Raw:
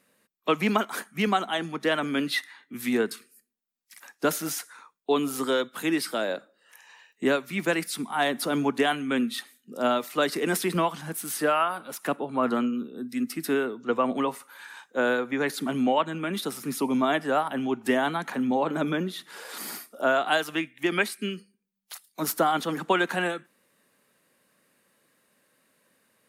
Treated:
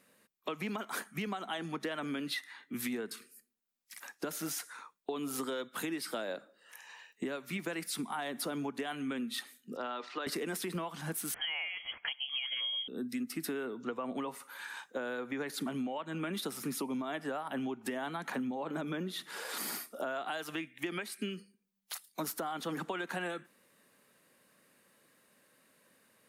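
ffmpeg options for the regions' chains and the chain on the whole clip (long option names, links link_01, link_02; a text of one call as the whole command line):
ffmpeg -i in.wav -filter_complex "[0:a]asettb=1/sr,asplit=3[link_01][link_02][link_03];[link_01]atrim=end=9.764[link_04];[link_02]atrim=start=9.76:end=10.27,asetpts=PTS-STARTPTS,afade=type=in:duration=0.004:curve=qsin,afade=type=out:start_time=0.506:duration=0.004:curve=qsin,highpass=390,equalizer=frequency=610:width_type=q:width=4:gain=-7,equalizer=frequency=2200:width_type=q:width=4:gain=-4,equalizer=frequency=3300:width_type=q:width=4:gain=-3,lowpass=frequency=4600:width=0.5412,lowpass=frequency=4600:width=1.3066,acompressor=threshold=-32dB:ratio=4:attack=3.2:release=140:knee=1:detection=peak[link_05];[link_03]atrim=start=10.266[link_06];[link_04][link_05]acrossfade=duration=0.004:curve1=hsin:curve2=qsin[link_07];[link_07][link_06]acrossfade=duration=0.004:curve1=qsin:curve2=hsin,asettb=1/sr,asplit=3[link_08][link_09][link_10];[link_08]atrim=end=11.344[link_11];[link_09]atrim=start=11.34:end=12.88,asetpts=PTS-STARTPTS,afade=type=in:duration=0.004:curve=qsin,afade=type=out:start_time=1.536:duration=0.004:curve=qsin,bandreject=frequency=880:width=8.4,lowpass=frequency=3000:width_type=q:width=0.5098,lowpass=frequency=3000:width_type=q:width=0.6013,lowpass=frequency=3000:width_type=q:width=0.9,lowpass=frequency=3000:width_type=q:width=2.563,afreqshift=-3500[link_12];[link_10]atrim=start=12.876[link_13];[link_11][link_12]acrossfade=duration=0.004:curve1=hsin:curve2=qsin[link_14];[link_14][link_13]acrossfade=duration=0.004:curve1=qsin:curve2=hsin,alimiter=limit=-21dB:level=0:latency=1:release=257,acompressor=threshold=-34dB:ratio=6" out.wav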